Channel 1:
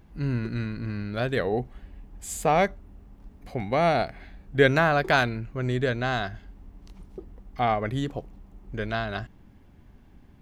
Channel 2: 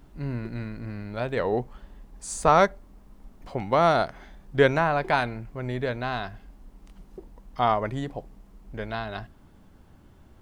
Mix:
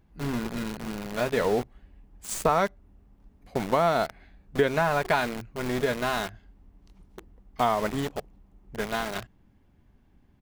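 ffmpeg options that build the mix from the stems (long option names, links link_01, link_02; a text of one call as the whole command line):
ffmpeg -i stem1.wav -i stem2.wav -filter_complex "[0:a]volume=-8dB[link_01];[1:a]aeval=exprs='val(0)*gte(abs(val(0)),0.0266)':channel_layout=same,adelay=5.1,volume=2.5dB[link_02];[link_01][link_02]amix=inputs=2:normalize=0,acompressor=threshold=-20dB:ratio=4" out.wav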